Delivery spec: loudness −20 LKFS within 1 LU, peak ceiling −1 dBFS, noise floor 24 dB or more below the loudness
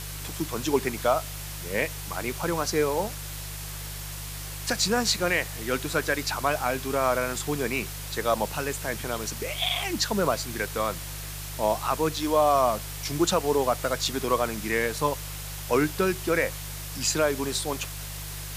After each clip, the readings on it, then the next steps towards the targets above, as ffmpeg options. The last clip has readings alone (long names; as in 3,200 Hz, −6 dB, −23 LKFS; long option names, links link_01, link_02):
mains hum 50 Hz; hum harmonics up to 150 Hz; level of the hum −36 dBFS; background noise floor −36 dBFS; target noise floor −51 dBFS; integrated loudness −27.0 LKFS; sample peak −10.5 dBFS; target loudness −20.0 LKFS
→ -af "bandreject=frequency=50:width_type=h:width=4,bandreject=frequency=100:width_type=h:width=4,bandreject=frequency=150:width_type=h:width=4"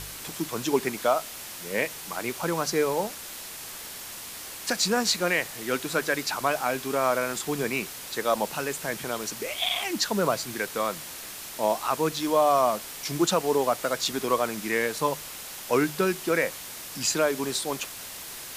mains hum none found; background noise floor −40 dBFS; target noise floor −52 dBFS
→ -af "afftdn=noise_reduction=12:noise_floor=-40"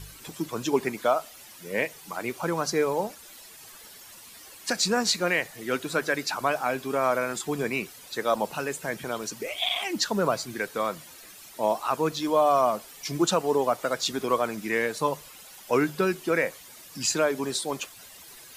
background noise floor −48 dBFS; target noise floor −51 dBFS
→ -af "afftdn=noise_reduction=6:noise_floor=-48"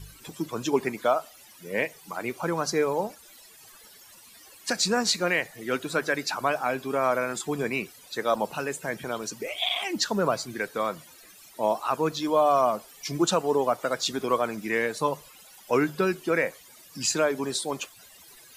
background noise floor −52 dBFS; integrated loudness −27.0 LKFS; sample peak −11.0 dBFS; target loudness −20.0 LKFS
→ -af "volume=7dB"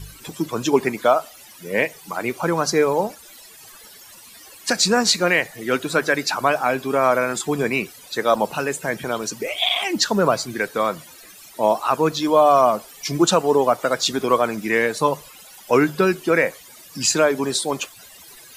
integrated loudness −20.0 LKFS; sample peak −4.0 dBFS; background noise floor −45 dBFS